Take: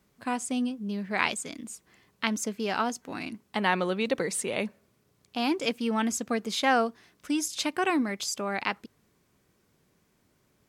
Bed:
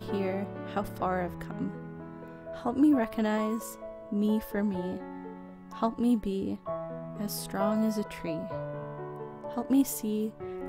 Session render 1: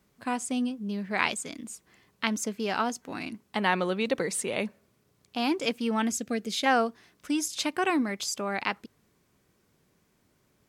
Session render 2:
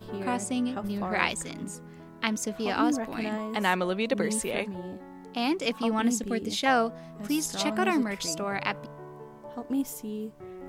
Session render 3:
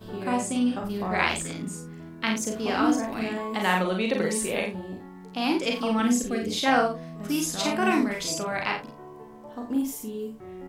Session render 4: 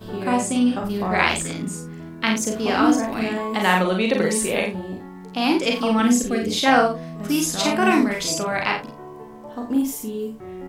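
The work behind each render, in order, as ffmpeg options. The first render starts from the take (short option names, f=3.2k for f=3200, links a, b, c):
-filter_complex "[0:a]asettb=1/sr,asplit=3[a][b][c];[a]atrim=end=6.114[d];[b]atrim=start=6.11:end=6.66,asetpts=PTS-STARTPTS,afade=t=in:d=0.004:c=qsin,afade=t=out:st=0.546:d=0.004:c=qsin,equalizer=f=1k:t=o:w=0.68:g=-15[e];[c]atrim=start=6.656[f];[d][e]acrossfade=d=0.004:c1=hsin:c2=qsin[g];[g][f]acrossfade=d=0.004:c1=qsin:c2=hsin"
-filter_complex "[1:a]volume=-4.5dB[a];[0:a][a]amix=inputs=2:normalize=0"
-filter_complex "[0:a]asplit=2[a][b];[b]adelay=49,volume=-5.5dB[c];[a][c]amix=inputs=2:normalize=0,aecho=1:1:37|59:0.531|0.178"
-af "volume=5.5dB,alimiter=limit=-1dB:level=0:latency=1"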